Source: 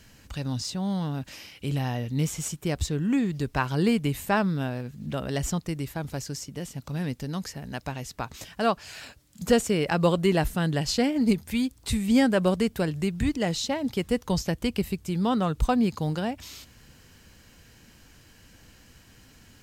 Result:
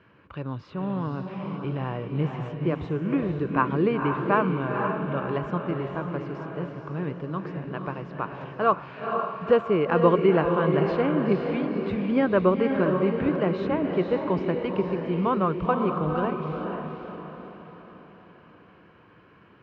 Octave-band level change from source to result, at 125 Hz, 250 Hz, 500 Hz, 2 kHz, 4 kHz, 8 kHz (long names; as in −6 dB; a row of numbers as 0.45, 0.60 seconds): −0.5 dB, 0.0 dB, +5.0 dB, +0.5 dB, −10.5 dB, below −35 dB